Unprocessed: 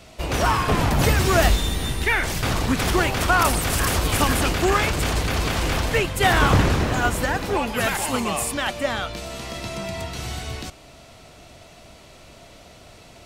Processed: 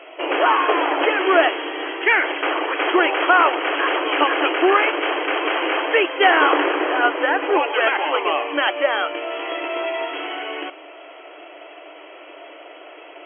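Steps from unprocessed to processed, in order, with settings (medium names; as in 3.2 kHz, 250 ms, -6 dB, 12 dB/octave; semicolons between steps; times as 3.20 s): in parallel at -1 dB: compression 20:1, threshold -26 dBFS, peak gain reduction 15 dB; on the sum: FFT band-pass 290–3300 Hz; trim +3 dB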